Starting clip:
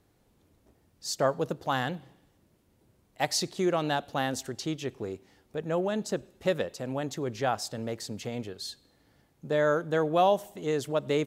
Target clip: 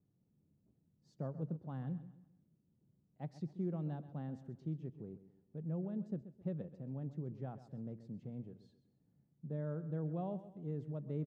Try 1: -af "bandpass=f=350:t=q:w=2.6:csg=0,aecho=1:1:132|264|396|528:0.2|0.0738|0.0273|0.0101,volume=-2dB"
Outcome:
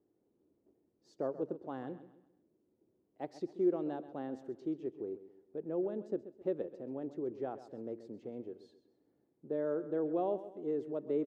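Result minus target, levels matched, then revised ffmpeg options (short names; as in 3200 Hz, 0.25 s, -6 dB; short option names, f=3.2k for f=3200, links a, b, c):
125 Hz band -17.0 dB
-af "bandpass=f=160:t=q:w=2.6:csg=0,aecho=1:1:132|264|396|528:0.2|0.0738|0.0273|0.0101,volume=-2dB"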